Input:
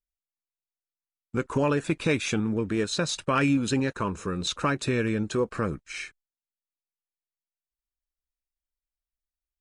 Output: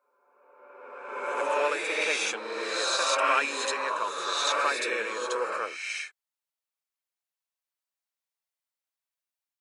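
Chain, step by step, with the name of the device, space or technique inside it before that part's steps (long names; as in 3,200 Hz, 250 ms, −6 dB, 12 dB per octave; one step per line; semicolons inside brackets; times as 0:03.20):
ghost voice (reversed playback; convolution reverb RT60 1.8 s, pre-delay 51 ms, DRR −2.5 dB; reversed playback; high-pass filter 550 Hz 24 dB per octave)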